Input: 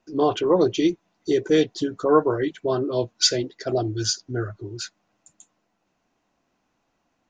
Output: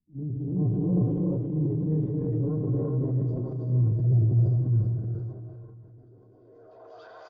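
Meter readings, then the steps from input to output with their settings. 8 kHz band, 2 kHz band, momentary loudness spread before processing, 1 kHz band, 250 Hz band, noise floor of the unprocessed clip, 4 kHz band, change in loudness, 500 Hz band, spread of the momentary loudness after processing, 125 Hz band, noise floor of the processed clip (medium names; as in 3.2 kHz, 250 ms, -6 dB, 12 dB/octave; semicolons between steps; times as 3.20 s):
under -40 dB, under -20 dB, 13 LU, under -20 dB, -3.5 dB, -73 dBFS, under -40 dB, -3.5 dB, -13.5 dB, 11 LU, +11.0 dB, -54 dBFS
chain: backward echo that repeats 172 ms, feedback 74%, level -11 dB; treble shelf 4 kHz +7.5 dB; hum notches 50/100 Hz; on a send: feedback echo behind a band-pass 928 ms, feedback 57%, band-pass 1.3 kHz, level -9 dB; on the sum: low-pass sweep 150 Hz -> 5.4 kHz, 5.71–7.26 s; gate -37 dBFS, range -6 dB; three bands offset in time lows, highs, mids 50/370 ms, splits 350/3200 Hz; gated-style reverb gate 440 ms rising, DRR -3 dB; transient shaper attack -5 dB, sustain +5 dB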